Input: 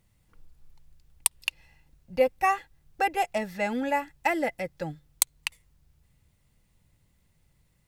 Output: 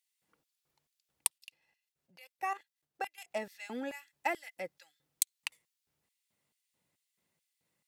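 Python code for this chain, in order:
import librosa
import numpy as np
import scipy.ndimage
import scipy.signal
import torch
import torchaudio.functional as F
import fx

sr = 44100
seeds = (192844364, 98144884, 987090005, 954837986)

y = fx.level_steps(x, sr, step_db=13, at=(1.38, 3.31))
y = fx.filter_lfo_highpass(y, sr, shape='square', hz=2.3, low_hz=280.0, high_hz=3000.0, q=0.76)
y = y * librosa.db_to_amplitude(-7.0)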